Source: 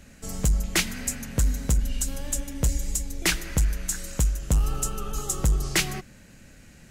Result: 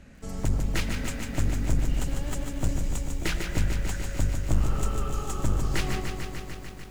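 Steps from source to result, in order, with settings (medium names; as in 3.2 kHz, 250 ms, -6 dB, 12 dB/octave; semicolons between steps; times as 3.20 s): one-sided wavefolder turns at -23.5 dBFS; low-pass 2.2 kHz 6 dB/octave; bit-crushed delay 148 ms, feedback 80%, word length 9-bit, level -6 dB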